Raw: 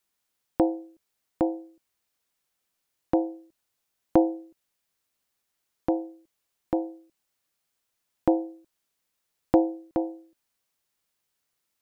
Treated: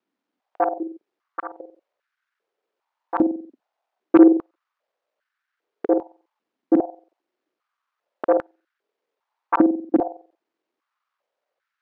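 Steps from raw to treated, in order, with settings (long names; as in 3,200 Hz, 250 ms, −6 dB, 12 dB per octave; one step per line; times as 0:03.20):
reversed piece by piece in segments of 46 ms
high-shelf EQ 2,000 Hz −10 dB
sine wavefolder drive 11 dB, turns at −5 dBFS
high-frequency loss of the air 160 metres
high-pass on a step sequencer 2.5 Hz 260–1,500 Hz
level −9 dB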